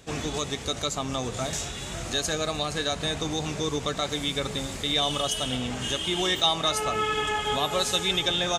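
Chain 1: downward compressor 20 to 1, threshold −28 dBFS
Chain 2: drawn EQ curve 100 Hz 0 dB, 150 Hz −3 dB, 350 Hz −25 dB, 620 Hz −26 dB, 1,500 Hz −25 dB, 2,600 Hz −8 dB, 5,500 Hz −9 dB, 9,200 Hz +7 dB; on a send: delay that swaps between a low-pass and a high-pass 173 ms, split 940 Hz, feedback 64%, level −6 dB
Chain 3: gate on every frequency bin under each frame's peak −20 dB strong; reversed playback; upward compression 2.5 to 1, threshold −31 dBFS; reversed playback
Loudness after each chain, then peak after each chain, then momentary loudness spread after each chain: −32.0, −33.0, −27.0 LKFS; −18.0, −15.0, −10.0 dBFS; 2, 6, 7 LU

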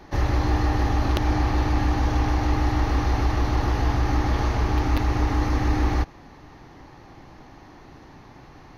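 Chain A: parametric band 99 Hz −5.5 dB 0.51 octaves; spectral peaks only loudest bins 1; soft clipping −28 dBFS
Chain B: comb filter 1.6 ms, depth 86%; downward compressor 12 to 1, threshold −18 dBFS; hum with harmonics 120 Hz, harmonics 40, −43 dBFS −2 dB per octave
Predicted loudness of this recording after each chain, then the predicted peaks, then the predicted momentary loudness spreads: −35.5, −25.0 LKFS; −28.0, −11.0 dBFS; 1, 16 LU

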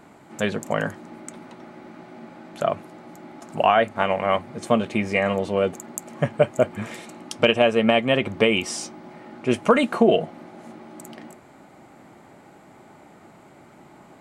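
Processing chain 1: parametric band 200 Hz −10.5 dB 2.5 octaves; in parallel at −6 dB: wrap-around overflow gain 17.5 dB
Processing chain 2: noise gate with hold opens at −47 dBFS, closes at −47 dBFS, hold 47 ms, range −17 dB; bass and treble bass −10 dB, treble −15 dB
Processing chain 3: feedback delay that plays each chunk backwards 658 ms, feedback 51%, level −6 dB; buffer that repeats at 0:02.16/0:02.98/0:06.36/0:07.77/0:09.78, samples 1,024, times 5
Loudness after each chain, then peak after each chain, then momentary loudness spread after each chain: −24.5, −23.5, −22.0 LKFS; −4.5, −3.0, −1.0 dBFS; 23, 19, 21 LU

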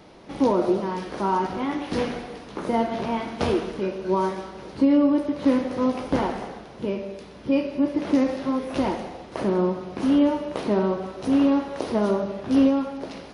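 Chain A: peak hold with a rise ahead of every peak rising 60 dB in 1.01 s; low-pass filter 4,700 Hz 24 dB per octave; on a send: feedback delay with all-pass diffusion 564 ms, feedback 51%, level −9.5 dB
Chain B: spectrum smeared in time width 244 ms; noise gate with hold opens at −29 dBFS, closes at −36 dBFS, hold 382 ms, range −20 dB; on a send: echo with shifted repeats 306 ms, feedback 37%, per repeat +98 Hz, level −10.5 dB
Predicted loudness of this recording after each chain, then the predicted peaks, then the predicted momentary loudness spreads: −22.0, −26.5 LKFS; −5.5, −12.5 dBFS; 8, 11 LU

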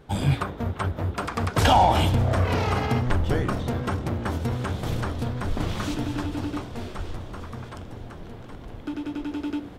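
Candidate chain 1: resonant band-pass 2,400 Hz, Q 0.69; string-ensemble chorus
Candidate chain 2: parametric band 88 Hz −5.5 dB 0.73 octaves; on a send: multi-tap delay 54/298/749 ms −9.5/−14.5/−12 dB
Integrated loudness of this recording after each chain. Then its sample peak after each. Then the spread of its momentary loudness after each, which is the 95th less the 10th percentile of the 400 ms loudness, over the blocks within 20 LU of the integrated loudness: −36.5, −26.0 LKFS; −15.5, −5.0 dBFS; 20, 17 LU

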